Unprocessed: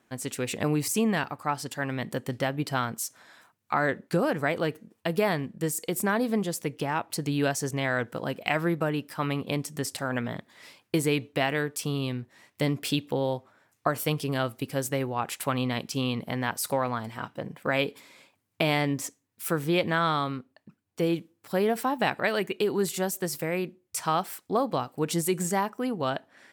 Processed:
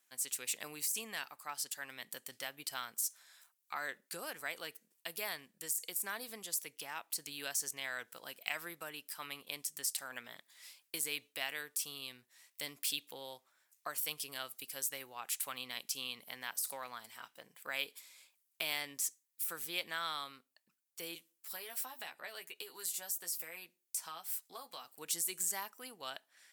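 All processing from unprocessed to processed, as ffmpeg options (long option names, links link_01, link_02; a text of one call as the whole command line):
ffmpeg -i in.wav -filter_complex "[0:a]asettb=1/sr,asplit=3[link_01][link_02][link_03];[link_01]atrim=end=21.154[link_04];[link_02]atrim=start=21.15:end=24.85,asetpts=PTS-STARTPTS,afade=type=in:duration=0.004:curve=qsin,afade=type=out:start_time=3.696:duration=0.004:curve=qsin,asplit=2[link_05][link_06];[link_06]adelay=12,volume=-5dB[link_07];[link_05][link_07]amix=inputs=2:normalize=0,atrim=end_sample=163170,acrossover=split=490|1100[link_08][link_09][link_10];[link_08]acompressor=threshold=-37dB:ratio=4[link_11];[link_09]acompressor=threshold=-34dB:ratio=4[link_12];[link_10]acompressor=threshold=-38dB:ratio=4[link_13];[link_11][link_12][link_13]amix=inputs=3:normalize=0[link_14];[link_03]atrim=start=24.846[link_15];[link_04][link_14]acrossfade=duration=0.004:curve1=hsin:curve2=qsin[link_16];[link_16][link_15]acrossfade=duration=0.004:curve1=qsin:curve2=hsin,deesser=0.55,aderivative,volume=1dB" out.wav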